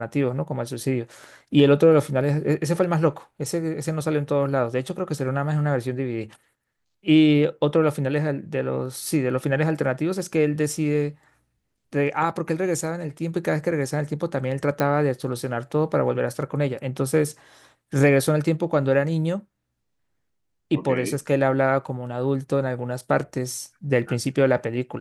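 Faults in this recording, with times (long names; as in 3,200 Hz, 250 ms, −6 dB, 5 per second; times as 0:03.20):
0:14.80: click −10 dBFS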